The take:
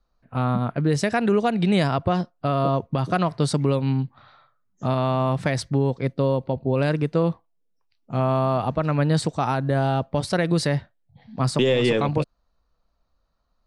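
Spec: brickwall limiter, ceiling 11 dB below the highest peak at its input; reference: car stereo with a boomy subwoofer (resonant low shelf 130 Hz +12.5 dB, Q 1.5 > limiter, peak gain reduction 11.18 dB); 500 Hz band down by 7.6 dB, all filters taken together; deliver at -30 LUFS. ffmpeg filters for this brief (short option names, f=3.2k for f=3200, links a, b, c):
-af "equalizer=f=500:t=o:g=-9,alimiter=limit=-23dB:level=0:latency=1,lowshelf=f=130:t=q:w=1.5:g=12.5,volume=4.5dB,alimiter=limit=-21.5dB:level=0:latency=1"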